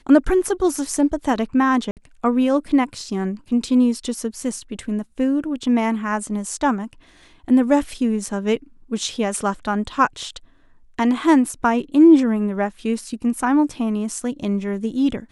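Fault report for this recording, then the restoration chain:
1.91–1.97 gap 58 ms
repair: interpolate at 1.91, 58 ms

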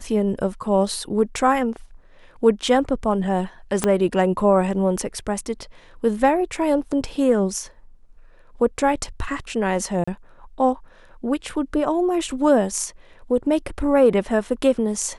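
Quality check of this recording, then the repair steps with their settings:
3.84 pop -5 dBFS
10.04–10.07 gap 35 ms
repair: de-click; interpolate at 10.04, 35 ms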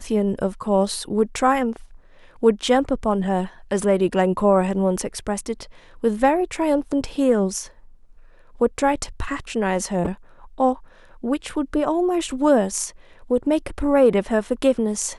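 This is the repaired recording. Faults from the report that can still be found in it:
3.84 pop

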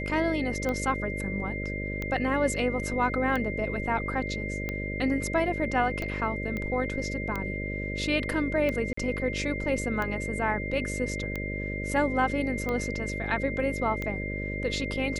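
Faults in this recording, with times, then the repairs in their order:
buzz 50 Hz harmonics 12 -34 dBFS
tick 45 rpm -18 dBFS
tone 2100 Hz -35 dBFS
6.57 pop -21 dBFS
8.93–8.97 gap 44 ms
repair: de-click; notch 2100 Hz, Q 30; de-hum 50 Hz, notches 12; interpolate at 8.93, 44 ms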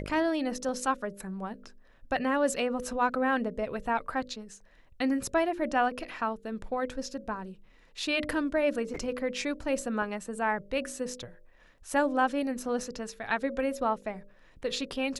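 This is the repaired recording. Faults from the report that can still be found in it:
none

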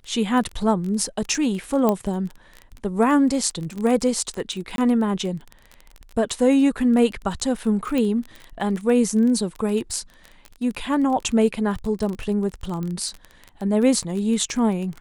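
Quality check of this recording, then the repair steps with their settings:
crackle 21/s -27 dBFS
1.89 pop -8 dBFS
4.76–4.78 gap 22 ms
7.98 pop
12.83 pop -19 dBFS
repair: de-click; interpolate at 4.76, 22 ms

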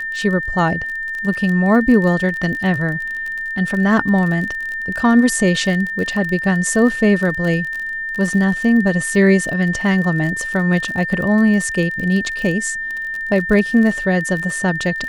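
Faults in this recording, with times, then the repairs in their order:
crackle 33/s -23 dBFS
tone 1800 Hz -22 dBFS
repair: de-click; notch 1800 Hz, Q 30

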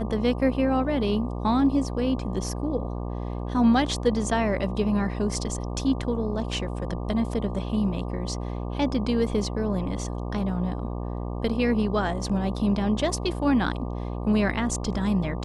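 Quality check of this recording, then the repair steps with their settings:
buzz 60 Hz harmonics 20 -31 dBFS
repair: de-hum 60 Hz, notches 20

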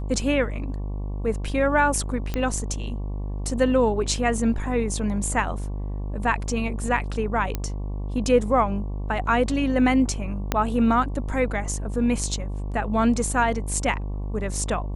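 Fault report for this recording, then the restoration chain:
buzz 50 Hz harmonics 23 -29 dBFS
2.34 pop -13 dBFS
7.55 pop -12 dBFS
10.52 pop -7 dBFS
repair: de-click; de-hum 50 Hz, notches 23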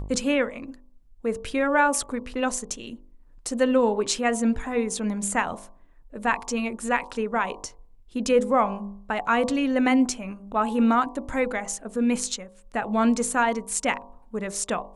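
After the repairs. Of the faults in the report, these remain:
2.34 pop
10.52 pop

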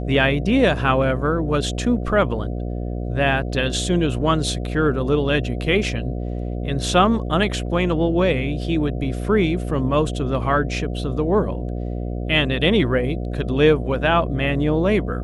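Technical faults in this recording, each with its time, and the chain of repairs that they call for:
buzz 60 Hz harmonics 12 -26 dBFS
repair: de-hum 60 Hz, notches 12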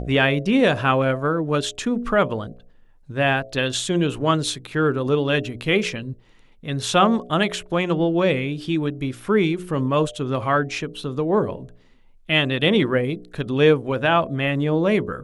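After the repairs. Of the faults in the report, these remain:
none

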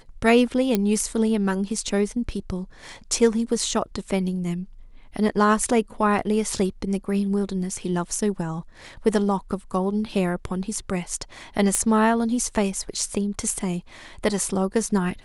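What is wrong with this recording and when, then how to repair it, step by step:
0.75 pop -7 dBFS
11.75 pop -8 dBFS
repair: de-click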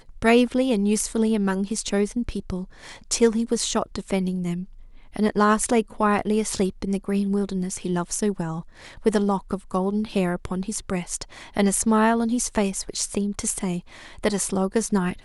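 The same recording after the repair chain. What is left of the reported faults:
none

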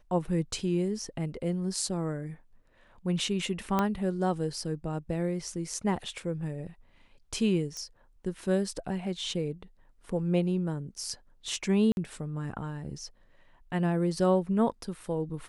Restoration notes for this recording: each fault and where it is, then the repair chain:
3.79 pop -13 dBFS
7.77 pop -25 dBFS
11.92–11.97 gap 51 ms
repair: de-click; interpolate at 11.92, 51 ms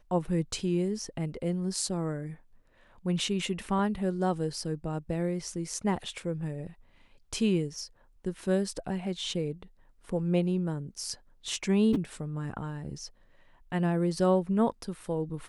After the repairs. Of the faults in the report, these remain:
3.79 pop
7.77 pop

